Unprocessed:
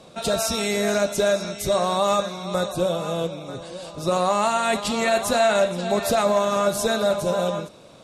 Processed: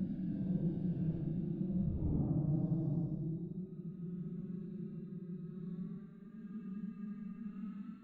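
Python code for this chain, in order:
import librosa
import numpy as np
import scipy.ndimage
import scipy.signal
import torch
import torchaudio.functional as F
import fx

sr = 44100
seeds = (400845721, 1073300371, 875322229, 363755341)

y = fx.filter_sweep_lowpass(x, sr, from_hz=220.0, to_hz=9500.0, start_s=3.7, end_s=6.78, q=1.0)
y = fx.over_compress(y, sr, threshold_db=-38.0, ratio=-1.0)
y = scipy.signal.sosfilt(scipy.signal.ellip(3, 1.0, 40, [300.0, 1600.0], 'bandstop', fs=sr, output='sos'), y)
y = 10.0 ** (-32.0 / 20.0) * np.tanh(y / 10.0 ** (-32.0 / 20.0))
y = fx.paulstretch(y, sr, seeds[0], factor=12.0, window_s=0.05, from_s=3.79)
y = fx.echo_heads(y, sr, ms=145, heads='first and third', feedback_pct=52, wet_db=-18)
y = F.gain(torch.from_numpy(y), 2.0).numpy()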